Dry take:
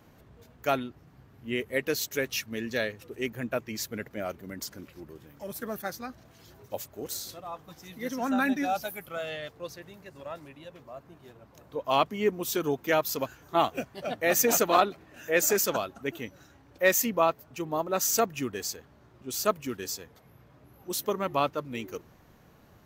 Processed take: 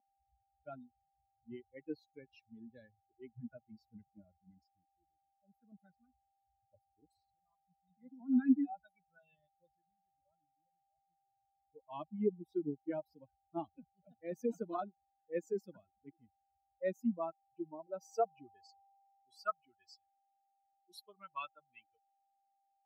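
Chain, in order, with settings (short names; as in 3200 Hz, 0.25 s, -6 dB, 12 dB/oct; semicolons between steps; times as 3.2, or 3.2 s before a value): per-bin expansion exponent 3; 4.67–5.72 low shelf 340 Hz -11 dB; whine 790 Hz -67 dBFS; band-pass sweep 250 Hz -> 2000 Hz, 17.01–19.81; gain +4 dB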